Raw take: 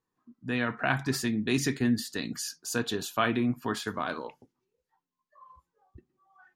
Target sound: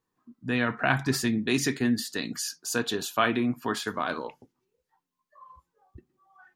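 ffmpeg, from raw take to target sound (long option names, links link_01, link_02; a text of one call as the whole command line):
ffmpeg -i in.wav -filter_complex "[0:a]asettb=1/sr,asplit=3[link_01][link_02][link_03];[link_01]atrim=end=1.384[link_04];[link_02]atrim=start=1.38:end=4.1,asetpts=PTS-STARTPTS,afade=type=in:duration=0.004:curve=qsin,afade=type=out:start_time=2.716:duration=0.004:curve=qsin,lowshelf=frequency=130:gain=-9.5[link_05];[link_03]atrim=start=4.096[link_06];[link_04][link_05]acrossfade=duration=0.004:curve1=hsin:curve2=qsin[link_07];[link_07][link_06]acrossfade=duration=0.004:curve1=qsin:curve2=hsin,volume=3dB" out.wav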